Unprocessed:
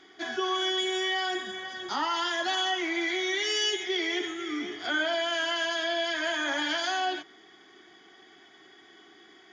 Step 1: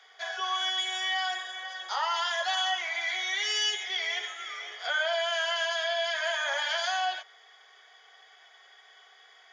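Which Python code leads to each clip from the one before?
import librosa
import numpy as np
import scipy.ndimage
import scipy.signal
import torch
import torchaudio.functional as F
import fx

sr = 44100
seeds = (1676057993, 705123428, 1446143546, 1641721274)

y = scipy.signal.sosfilt(scipy.signal.butter(12, 470.0, 'highpass', fs=sr, output='sos'), x)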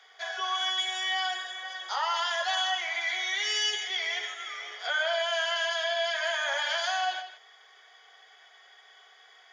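y = x + 10.0 ** (-11.5 / 20.0) * np.pad(x, (int(154 * sr / 1000.0), 0))[:len(x)]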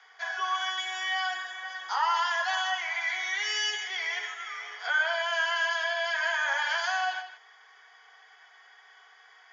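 y = fx.cabinet(x, sr, low_hz=420.0, low_slope=24, high_hz=6800.0, hz=(600.0, 970.0, 1600.0, 3600.0), db=(-8, 6, 4, -8))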